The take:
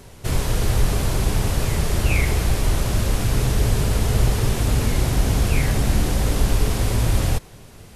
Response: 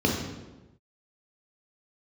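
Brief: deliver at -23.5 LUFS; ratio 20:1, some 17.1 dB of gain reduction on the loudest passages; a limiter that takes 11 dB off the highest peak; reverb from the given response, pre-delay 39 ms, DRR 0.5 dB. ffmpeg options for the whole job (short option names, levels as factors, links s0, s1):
-filter_complex "[0:a]acompressor=threshold=0.0316:ratio=20,alimiter=level_in=2.51:limit=0.0631:level=0:latency=1,volume=0.398,asplit=2[s0][s1];[1:a]atrim=start_sample=2205,adelay=39[s2];[s1][s2]afir=irnorm=-1:irlink=0,volume=0.188[s3];[s0][s3]amix=inputs=2:normalize=0,volume=3.55"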